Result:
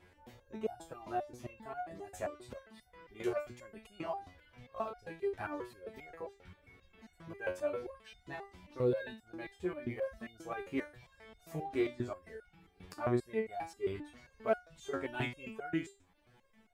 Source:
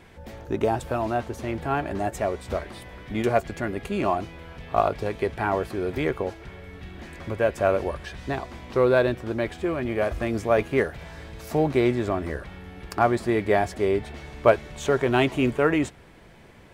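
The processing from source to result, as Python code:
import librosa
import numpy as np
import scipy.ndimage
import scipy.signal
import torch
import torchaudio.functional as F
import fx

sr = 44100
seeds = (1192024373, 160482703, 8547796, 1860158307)

y = fx.dereverb_blind(x, sr, rt60_s=0.66)
y = fx.resonator_held(y, sr, hz=7.5, low_hz=91.0, high_hz=720.0)
y = F.gain(torch.from_numpy(y), -2.0).numpy()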